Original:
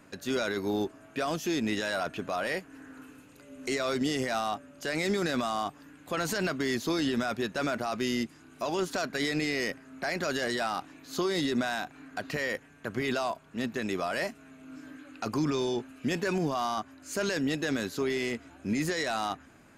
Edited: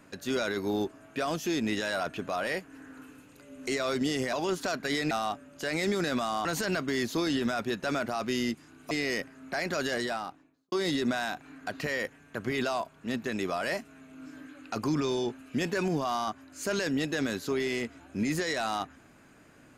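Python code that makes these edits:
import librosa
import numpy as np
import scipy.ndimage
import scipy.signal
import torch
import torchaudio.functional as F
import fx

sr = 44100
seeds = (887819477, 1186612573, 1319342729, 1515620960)

y = fx.studio_fade_out(x, sr, start_s=10.42, length_s=0.8)
y = fx.edit(y, sr, fx.cut(start_s=5.67, length_s=0.5),
    fx.move(start_s=8.63, length_s=0.78, to_s=4.33), tone=tone)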